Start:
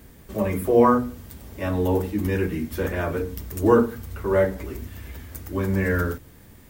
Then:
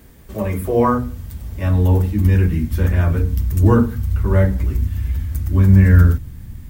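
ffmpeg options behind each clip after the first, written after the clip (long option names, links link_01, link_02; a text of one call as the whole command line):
ffmpeg -i in.wav -af "asubboost=boost=9.5:cutoff=150,volume=1.5dB" out.wav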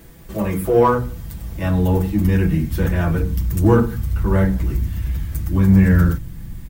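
ffmpeg -i in.wav -filter_complex "[0:a]aecho=1:1:6:0.55,asplit=2[link_01][link_02];[link_02]asoftclip=type=tanh:threshold=-17dB,volume=-7dB[link_03];[link_01][link_03]amix=inputs=2:normalize=0,volume=-1.5dB" out.wav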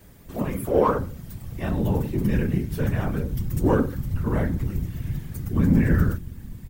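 ffmpeg -i in.wav -af "afftfilt=real='hypot(re,im)*cos(2*PI*random(0))':imag='hypot(re,im)*sin(2*PI*random(1))':win_size=512:overlap=0.75" out.wav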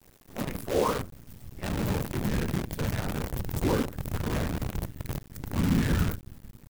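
ffmpeg -i in.wav -af "acrusher=bits=5:dc=4:mix=0:aa=0.000001,volume=-6.5dB" out.wav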